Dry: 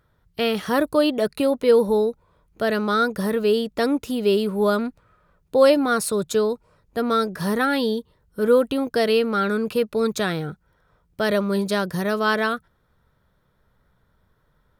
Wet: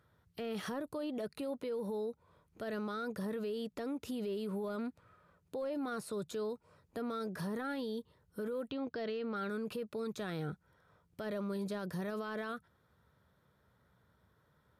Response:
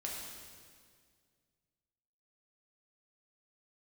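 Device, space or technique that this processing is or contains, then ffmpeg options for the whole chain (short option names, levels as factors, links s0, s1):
podcast mastering chain: -filter_complex "[0:a]asplit=3[s0][s1][s2];[s0]afade=t=out:st=8.68:d=0.02[s3];[s1]lowpass=f=5100:w=0.5412,lowpass=f=5100:w=1.3066,afade=t=in:st=8.68:d=0.02,afade=t=out:st=9.35:d=0.02[s4];[s2]afade=t=in:st=9.35:d=0.02[s5];[s3][s4][s5]amix=inputs=3:normalize=0,highpass=f=68:w=0.5412,highpass=f=68:w=1.3066,deesser=0.8,acompressor=threshold=0.0282:ratio=2,alimiter=level_in=1.5:limit=0.0631:level=0:latency=1:release=36,volume=0.668,volume=0.631" -ar 32000 -c:a libmp3lame -b:a 112k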